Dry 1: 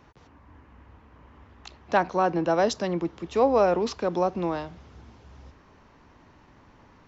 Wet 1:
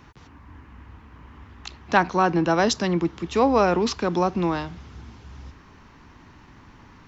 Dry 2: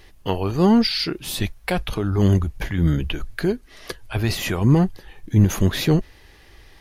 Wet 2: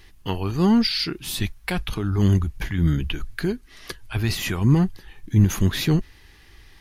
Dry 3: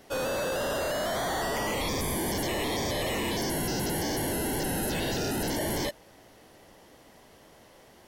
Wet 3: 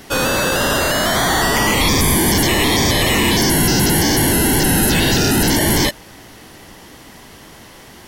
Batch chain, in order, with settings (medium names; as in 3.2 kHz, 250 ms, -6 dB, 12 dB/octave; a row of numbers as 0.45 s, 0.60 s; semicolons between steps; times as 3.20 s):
peaking EQ 570 Hz -9 dB 1 oct; peak normalisation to -6 dBFS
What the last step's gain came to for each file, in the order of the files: +7.5 dB, -0.5 dB, +17.0 dB